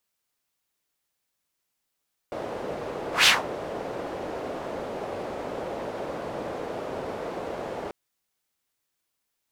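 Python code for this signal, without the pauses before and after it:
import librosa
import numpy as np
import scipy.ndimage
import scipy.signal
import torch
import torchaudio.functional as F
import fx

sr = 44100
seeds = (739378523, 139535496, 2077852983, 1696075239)

y = fx.whoosh(sr, seeds[0], length_s=5.59, peak_s=0.94, rise_s=0.15, fall_s=0.19, ends_hz=530.0, peak_hz=3200.0, q=1.6, swell_db=18)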